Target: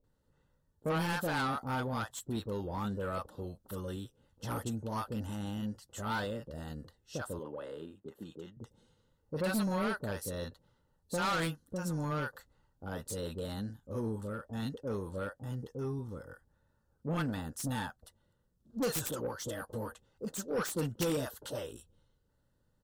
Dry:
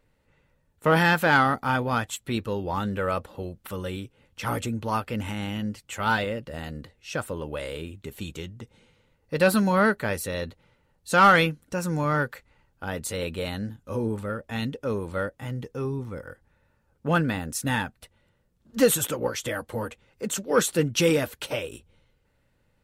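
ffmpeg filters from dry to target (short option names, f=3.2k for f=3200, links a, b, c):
-filter_complex "[0:a]asettb=1/sr,asplit=3[a][b][c];[a]atrim=end=7.394[d];[b]atrim=start=7.39:end=8.57,asetpts=PTS-STARTPTS,afade=t=in:d=0.004:c=qsin,afade=t=out:st=1.176:d=0.004:c=qsin,acrossover=split=170 2800:gain=0.1 1 0.178[e][f][g];[e][f][g]amix=inputs=3:normalize=0[h];[c]atrim=start=8.566[i];[d][h]acrossfade=d=0.004:c1=hsin:c2=qsin[j];[j][i]acrossfade=d=0.004:c1=qsin:c2=hsin,acrossover=split=680[k][l];[l]adelay=40[m];[k][m]amix=inputs=2:normalize=0,acrossover=split=2300[n][o];[n]asoftclip=type=tanh:threshold=-21.5dB[p];[o]aeval=exprs='0.237*(cos(1*acos(clip(val(0)/0.237,-1,1)))-cos(1*PI/2))+0.0841*(cos(2*acos(clip(val(0)/0.237,-1,1)))-cos(2*PI/2))+0.0944*(cos(3*acos(clip(val(0)/0.237,-1,1)))-cos(3*PI/2))+0.0211*(cos(4*acos(clip(val(0)/0.237,-1,1)))-cos(4*PI/2))+0.0266*(cos(7*acos(clip(val(0)/0.237,-1,1)))-cos(7*PI/2))':c=same[q];[p][q]amix=inputs=2:normalize=0,volume=-6dB"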